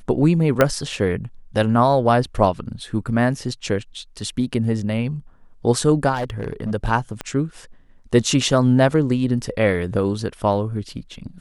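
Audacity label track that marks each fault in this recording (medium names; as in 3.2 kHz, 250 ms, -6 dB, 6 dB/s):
0.610000	0.610000	pop -2 dBFS
6.140000	6.720000	clipped -20 dBFS
7.210000	7.210000	pop -12 dBFS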